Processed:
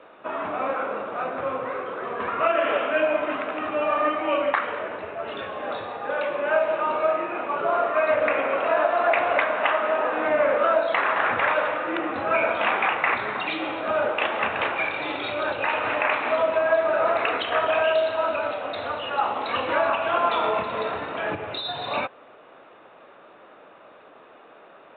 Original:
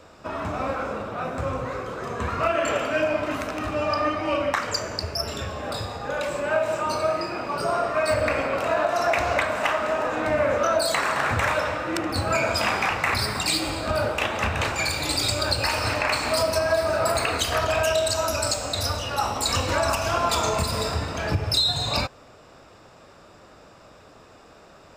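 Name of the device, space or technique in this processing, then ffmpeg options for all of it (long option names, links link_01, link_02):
telephone: -af "highpass=330,lowpass=3100,volume=2dB" -ar 8000 -c:a pcm_alaw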